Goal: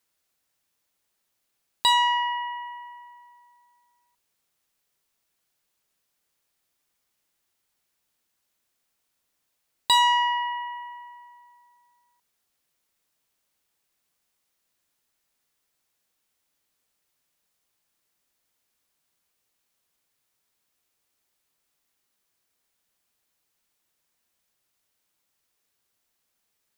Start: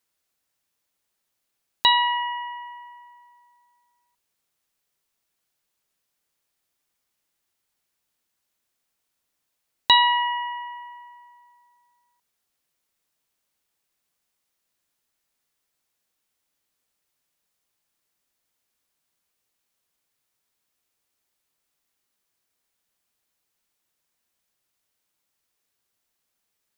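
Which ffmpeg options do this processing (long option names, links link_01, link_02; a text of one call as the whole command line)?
ffmpeg -i in.wav -af "asoftclip=type=tanh:threshold=-15dB,volume=1.5dB" out.wav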